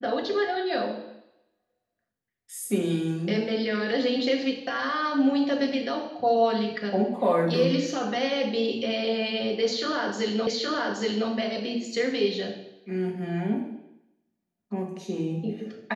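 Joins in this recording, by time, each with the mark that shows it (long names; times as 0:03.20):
0:10.47: the same again, the last 0.82 s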